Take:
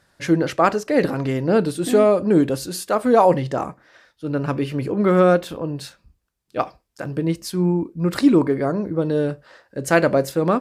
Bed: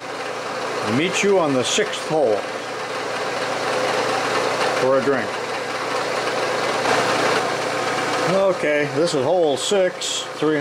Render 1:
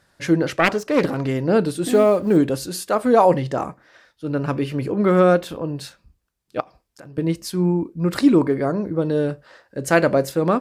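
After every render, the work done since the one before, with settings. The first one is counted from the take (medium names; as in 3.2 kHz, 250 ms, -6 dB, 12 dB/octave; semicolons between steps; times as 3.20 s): 0.59–1.21 s: self-modulated delay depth 0.28 ms; 1.88–2.37 s: companding laws mixed up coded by A; 6.60–7.18 s: compression 2.5:1, threshold -44 dBFS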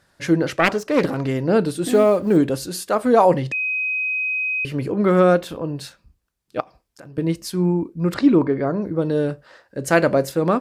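3.52–4.65 s: bleep 2.52 kHz -20 dBFS; 8.14–8.82 s: distance through air 130 m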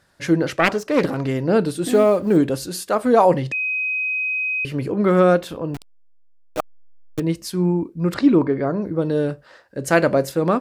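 5.74–7.20 s: send-on-delta sampling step -24.5 dBFS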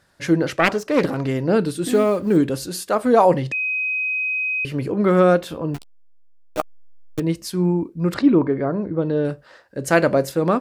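1.55–2.56 s: peaking EQ 690 Hz -5.5 dB; 5.46–7.19 s: doubling 13 ms -9 dB; 8.22–9.25 s: distance through air 180 m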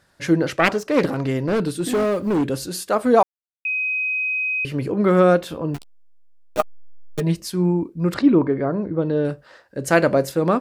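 1.39–2.50 s: overload inside the chain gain 16.5 dB; 3.23–3.65 s: mute; 6.58–7.40 s: comb 4.9 ms, depth 89%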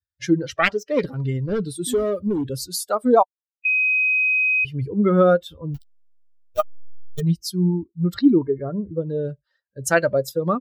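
expander on every frequency bin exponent 2; in parallel at +2 dB: compression, threshold -29 dBFS, peak gain reduction 16.5 dB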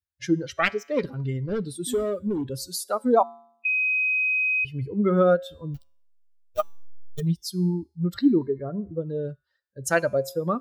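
feedback comb 77 Hz, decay 0.65 s, harmonics odd, mix 40%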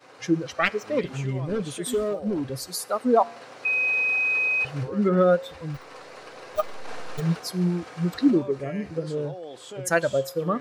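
add bed -21 dB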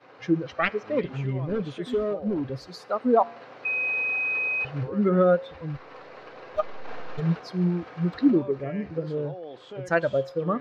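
distance through air 240 m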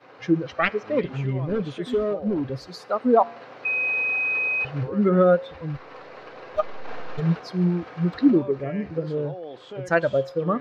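trim +2.5 dB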